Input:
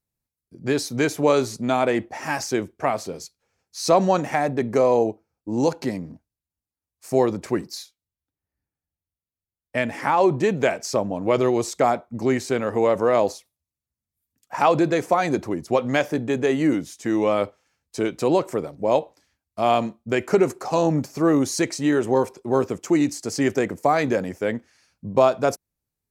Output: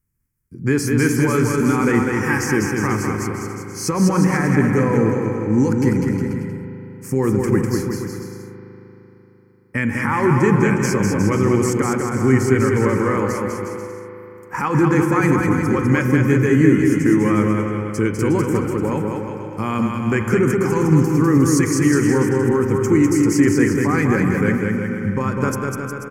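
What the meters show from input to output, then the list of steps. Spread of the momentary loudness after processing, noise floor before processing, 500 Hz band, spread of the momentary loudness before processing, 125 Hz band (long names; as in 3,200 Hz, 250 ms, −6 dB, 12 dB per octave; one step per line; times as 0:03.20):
11 LU, below −85 dBFS, +0.5 dB, 10 LU, +13.0 dB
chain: low-shelf EQ 140 Hz +9 dB
notch filter 2,700 Hz, Q 12
brickwall limiter −12.5 dBFS, peak gain reduction 9 dB
phaser with its sweep stopped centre 1,600 Hz, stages 4
bouncing-ball delay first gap 200 ms, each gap 0.8×, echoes 5
spring reverb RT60 3.6 s, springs 38 ms, chirp 65 ms, DRR 7.5 dB
level +7.5 dB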